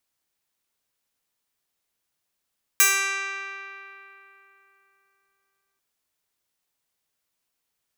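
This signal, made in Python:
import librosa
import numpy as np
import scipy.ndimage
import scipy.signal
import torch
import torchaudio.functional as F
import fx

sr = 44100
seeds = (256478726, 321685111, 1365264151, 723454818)

y = fx.pluck(sr, length_s=2.99, note=67, decay_s=3.42, pick=0.09, brightness='bright')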